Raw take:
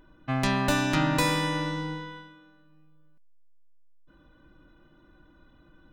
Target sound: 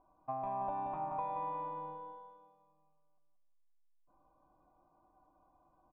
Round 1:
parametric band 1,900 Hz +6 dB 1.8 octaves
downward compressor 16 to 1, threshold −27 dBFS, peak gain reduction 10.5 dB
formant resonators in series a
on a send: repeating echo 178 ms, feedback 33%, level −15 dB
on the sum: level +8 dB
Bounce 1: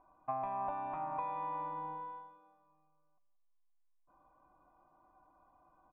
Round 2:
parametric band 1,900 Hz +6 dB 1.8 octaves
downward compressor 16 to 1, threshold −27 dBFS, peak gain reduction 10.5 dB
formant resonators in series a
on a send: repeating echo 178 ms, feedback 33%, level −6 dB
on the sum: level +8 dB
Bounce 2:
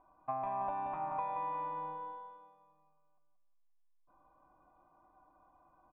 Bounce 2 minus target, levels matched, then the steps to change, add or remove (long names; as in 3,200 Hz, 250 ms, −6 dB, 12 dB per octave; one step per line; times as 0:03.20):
2,000 Hz band +5.5 dB
change: parametric band 1,900 Hz −4 dB 1.8 octaves